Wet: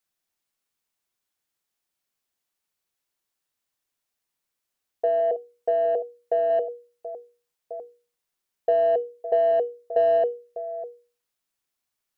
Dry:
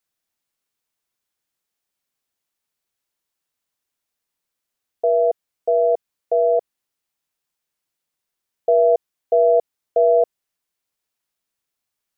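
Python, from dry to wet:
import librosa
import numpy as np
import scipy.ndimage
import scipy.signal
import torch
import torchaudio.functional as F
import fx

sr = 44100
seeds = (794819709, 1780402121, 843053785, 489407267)

p1 = fx.reverse_delay(x, sr, ms=650, wet_db=-13.5)
p2 = 10.0 ** (-17.5 / 20.0) * np.tanh(p1 / 10.0 ** (-17.5 / 20.0))
p3 = p1 + F.gain(torch.from_numpy(p2), -10.0).numpy()
p4 = fx.hum_notches(p3, sr, base_hz=60, count=8)
y = fx.comb_fb(p4, sr, f0_hz=370.0, decay_s=0.23, harmonics='all', damping=0.0, mix_pct=40)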